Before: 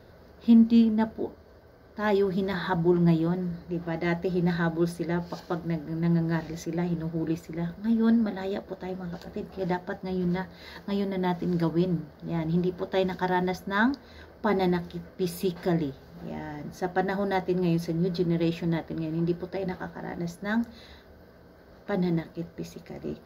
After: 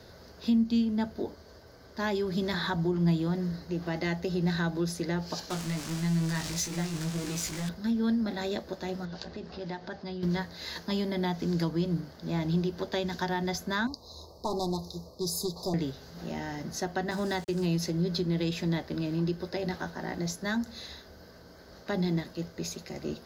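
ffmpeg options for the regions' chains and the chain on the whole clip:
-filter_complex "[0:a]asettb=1/sr,asplit=3[a][b][c];[a]atrim=end=5.504[d];[b]atrim=start=5.5:end=7.69,asetpts=PTS-STARTPTS,afade=t=in:d=0.004:c=qsin,afade=t=out:st=2.186:d=0.004:c=qsin,aeval=exprs='val(0)+0.5*0.0266*sgn(val(0))':c=same,equalizer=f=380:w=0.65:g=-5.5,flanger=delay=16.5:depth=3.2:speed=1.7[e];[c]atrim=start=7.686[f];[d][e]acrossfade=d=0.004:c1=hsin:c2=qsin[g];[g][f]acrossfade=d=0.004:c1=qsin:c2=hsin,asettb=1/sr,asplit=3[h][i][j];[h]atrim=end=9.054[k];[i]atrim=start=9.05:end=10.23,asetpts=PTS-STARTPTS,afade=t=in:d=0.004:c=qsin,afade=t=out:st=1.176:d=0.004:c=qsin,lowpass=f=5.4k:w=0.5412,lowpass=f=5.4k:w=1.3066,acompressor=threshold=-38dB:ratio=2.5:attack=3.2:release=140:knee=1:detection=peak[l];[j]atrim=start=10.226[m];[k][l]acrossfade=d=0.004:c1=hsin:c2=qsin[n];[n][m]acrossfade=d=0.004:c1=qsin:c2=hsin,asettb=1/sr,asplit=3[o][p][q];[o]atrim=end=13.874[r];[p]atrim=start=13.87:end=15.74,asetpts=PTS-STARTPTS,afade=t=in:d=0.004:c=qsin,afade=t=out:st=1.866:d=0.004:c=qsin,equalizer=f=240:w=1.6:g=-8,aeval=exprs='clip(val(0),-1,0.0501)':c=same,asuperstop=centerf=2100:order=20:qfactor=0.81[s];[q]atrim=start=15.736[t];[r][s]acrossfade=d=0.004:c1=hsin:c2=qsin[u];[u][t]acrossfade=d=0.004:c1=qsin:c2=hsin,asettb=1/sr,asplit=3[v][w][x];[v]atrim=end=17.114[y];[w]atrim=start=17.11:end=17.66,asetpts=PTS-STARTPTS,afade=t=in:d=0.004:c=qsin,afade=t=out:st=0.546:d=0.004:c=qsin,agate=range=-12dB:threshold=-36dB:ratio=16:release=100:detection=peak,equalizer=f=670:w=2.7:g=-4,aeval=exprs='val(0)*gte(abs(val(0)),0.00562)':c=same[z];[x]atrim=start=17.656[aa];[y][z]acrossfade=d=0.004:c1=hsin:c2=qsin[ab];[ab][aa]acrossfade=d=0.004:c1=qsin:c2=hsin,equalizer=f=6.5k:w=0.56:g=13,acrossover=split=160[ac][ad];[ad]acompressor=threshold=-29dB:ratio=4[ae];[ac][ae]amix=inputs=2:normalize=0"

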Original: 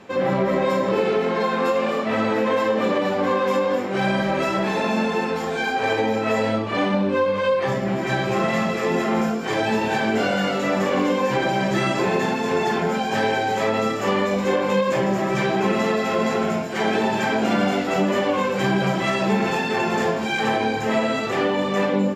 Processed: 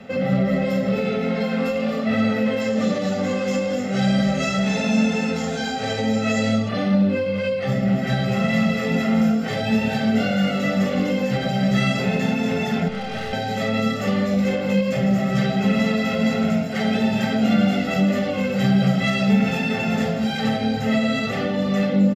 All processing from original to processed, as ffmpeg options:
-filter_complex "[0:a]asettb=1/sr,asplit=3[a][b][c];[a]atrim=end=2.614[d];[b]atrim=start=2.61:end=6.69,asetpts=PTS-STARTPTS,afade=t=in:d=0.004:c=qsin,afade=t=out:st=4.076:d=0.004:c=qsin,equalizer=f=6.8k:w=1.9:g=13.5,acrossover=split=7700[e][f];[f]acompressor=threshold=-49dB:ratio=4:attack=1:release=60[g];[e][g]amix=inputs=2:normalize=0[h];[c]atrim=start=6.686[i];[d][h]acrossfade=d=0.004:c1=hsin:c2=qsin[j];[j][i]acrossfade=d=0.004:c1=qsin:c2=hsin,asettb=1/sr,asplit=3[k][l][m];[k]atrim=end=12.884[n];[l]atrim=start=12.88:end=13.33,asetpts=PTS-STARTPTS,afade=t=in:d=0.004:c=qsin,afade=t=out:st=0.446:d=0.004:c=qsin,lowpass=4.2k,asplit=2[o][p];[p]adelay=25,volume=-3.5dB[q];[o][q]amix=inputs=2:normalize=0,atrim=end_sample=19845,aeval=exprs='(tanh(20*val(0)+0.25)-tanh(0.25))/20':c=same[r];[m]atrim=start=13.326[s];[n][r]acrossfade=d=0.004:c1=hsin:c2=qsin[t];[t][s]acrossfade=d=0.004:c1=qsin:c2=hsin,aecho=1:1:1.5:0.93,acrossover=split=200|3000[u][v][w];[v]acompressor=threshold=-30dB:ratio=2[x];[u][x][w]amix=inputs=3:normalize=0,equalizer=f=250:t=o:w=1:g=11,equalizer=f=1k:t=o:w=1:g=-5,equalizer=f=2k:t=o:w=1:g=3,equalizer=f=8k:t=o:w=1:g=-7"

